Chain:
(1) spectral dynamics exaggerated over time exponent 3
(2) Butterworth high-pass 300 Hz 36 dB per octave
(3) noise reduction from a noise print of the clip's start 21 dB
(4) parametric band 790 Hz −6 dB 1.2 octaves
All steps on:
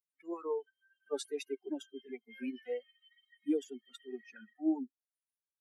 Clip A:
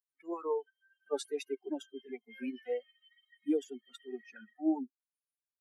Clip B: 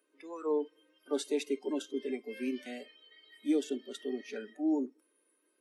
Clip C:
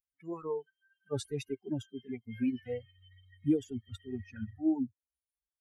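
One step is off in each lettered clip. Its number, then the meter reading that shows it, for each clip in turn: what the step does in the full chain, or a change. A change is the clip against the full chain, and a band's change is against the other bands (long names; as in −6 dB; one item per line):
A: 4, 1 kHz band +4.0 dB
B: 1, change in crest factor −2.0 dB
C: 2, 250 Hz band +4.5 dB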